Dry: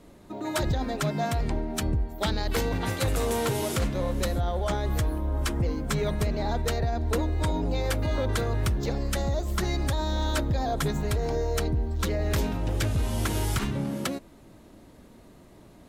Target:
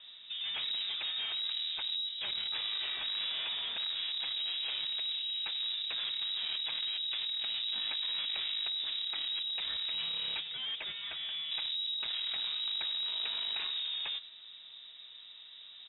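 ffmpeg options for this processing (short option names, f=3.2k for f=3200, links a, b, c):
-filter_complex "[0:a]asettb=1/sr,asplit=3[a][b][c];[a]atrim=end=10.404[d];[b]atrim=start=10.4:end=11.51,asetpts=PTS-STARTPTS,afade=t=in:d=0.004:c=qsin,afade=t=out:st=1.106:d=0.004:c=qsin,highpass=f=800:p=1[e];[c]atrim=start=11.506[f];[d][e]acrossfade=d=0.004:c1=hsin:c2=qsin[g];[g][f]acrossfade=d=0.004:c1=qsin:c2=hsin,asoftclip=type=tanh:threshold=-34.5dB,aecho=1:1:95:0.106,lowpass=f=3.3k:t=q:w=0.5098,lowpass=f=3.3k:t=q:w=0.6013,lowpass=f=3.3k:t=q:w=0.9,lowpass=f=3.3k:t=q:w=2.563,afreqshift=-3900"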